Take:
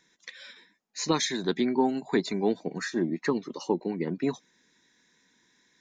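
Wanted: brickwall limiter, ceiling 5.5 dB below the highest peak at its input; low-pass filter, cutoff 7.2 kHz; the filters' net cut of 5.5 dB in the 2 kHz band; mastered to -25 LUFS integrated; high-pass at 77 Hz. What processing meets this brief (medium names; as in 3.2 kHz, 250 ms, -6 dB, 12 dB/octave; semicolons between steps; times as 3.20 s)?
high-pass 77 Hz; low-pass 7.2 kHz; peaking EQ 2 kHz -6.5 dB; trim +6 dB; peak limiter -12 dBFS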